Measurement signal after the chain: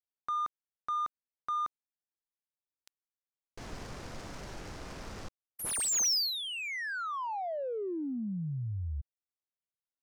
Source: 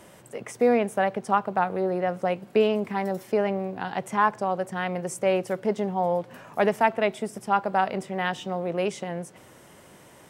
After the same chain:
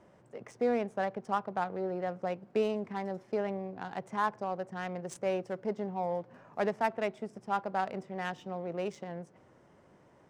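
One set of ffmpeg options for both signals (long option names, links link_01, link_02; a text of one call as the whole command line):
ffmpeg -i in.wav -af "highshelf=frequency=4300:width_type=q:width=1.5:gain=6.5,adynamicsmooth=sensitivity=3.5:basefreq=2000,volume=-8.5dB" out.wav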